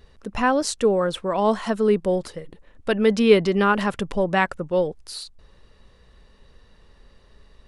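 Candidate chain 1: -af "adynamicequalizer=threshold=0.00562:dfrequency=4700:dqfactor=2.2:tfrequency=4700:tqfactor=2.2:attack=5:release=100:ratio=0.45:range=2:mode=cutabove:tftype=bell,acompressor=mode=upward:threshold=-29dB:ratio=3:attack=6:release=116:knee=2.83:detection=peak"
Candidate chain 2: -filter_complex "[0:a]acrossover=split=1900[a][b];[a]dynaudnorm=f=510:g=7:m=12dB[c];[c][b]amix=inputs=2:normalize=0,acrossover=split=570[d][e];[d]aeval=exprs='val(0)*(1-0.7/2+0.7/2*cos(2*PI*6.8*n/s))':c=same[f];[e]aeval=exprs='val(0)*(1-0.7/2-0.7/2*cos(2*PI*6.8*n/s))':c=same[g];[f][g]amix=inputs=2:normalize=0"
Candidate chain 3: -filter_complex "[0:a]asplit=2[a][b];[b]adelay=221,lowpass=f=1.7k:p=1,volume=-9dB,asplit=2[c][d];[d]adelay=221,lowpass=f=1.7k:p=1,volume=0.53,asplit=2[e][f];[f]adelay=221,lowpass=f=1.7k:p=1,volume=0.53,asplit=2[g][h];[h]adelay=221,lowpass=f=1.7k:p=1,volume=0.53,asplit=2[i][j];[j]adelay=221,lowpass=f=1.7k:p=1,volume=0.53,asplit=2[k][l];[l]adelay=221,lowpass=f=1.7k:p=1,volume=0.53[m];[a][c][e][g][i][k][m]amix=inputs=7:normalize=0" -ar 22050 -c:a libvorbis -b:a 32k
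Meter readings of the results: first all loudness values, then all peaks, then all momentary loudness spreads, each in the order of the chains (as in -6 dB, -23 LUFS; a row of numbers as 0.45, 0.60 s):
-21.5, -23.0, -21.5 LUFS; -3.0, -5.5, -4.0 dBFS; 16, 19, 14 LU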